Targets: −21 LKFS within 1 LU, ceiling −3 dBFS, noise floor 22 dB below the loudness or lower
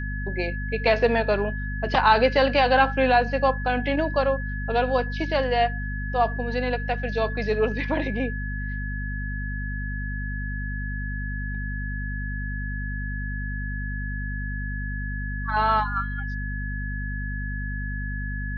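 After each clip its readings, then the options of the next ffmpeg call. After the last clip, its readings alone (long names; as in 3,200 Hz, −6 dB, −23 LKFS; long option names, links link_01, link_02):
mains hum 50 Hz; hum harmonics up to 250 Hz; level of the hum −28 dBFS; interfering tone 1,700 Hz; level of the tone −34 dBFS; integrated loudness −25.5 LKFS; sample peak −6.0 dBFS; target loudness −21.0 LKFS
→ -af "bandreject=frequency=50:width_type=h:width=6,bandreject=frequency=100:width_type=h:width=6,bandreject=frequency=150:width_type=h:width=6,bandreject=frequency=200:width_type=h:width=6,bandreject=frequency=250:width_type=h:width=6"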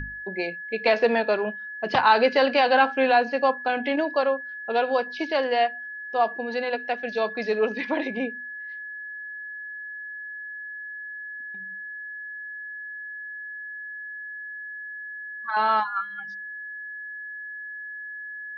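mains hum none found; interfering tone 1,700 Hz; level of the tone −34 dBFS
→ -af "bandreject=frequency=1700:width=30"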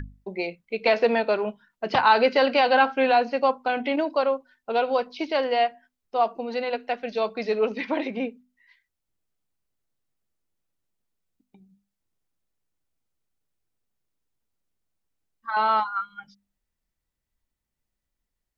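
interfering tone none found; integrated loudness −24.0 LKFS; sample peak −6.5 dBFS; target loudness −21.0 LKFS
→ -af "volume=3dB"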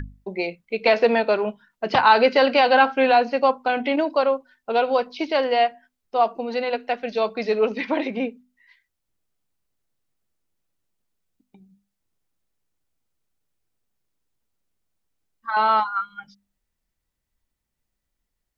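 integrated loudness −21.0 LKFS; sample peak −3.5 dBFS; background noise floor −80 dBFS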